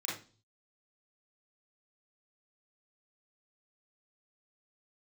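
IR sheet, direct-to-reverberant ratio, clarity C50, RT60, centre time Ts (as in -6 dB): -6.5 dB, 3.5 dB, 0.35 s, 44 ms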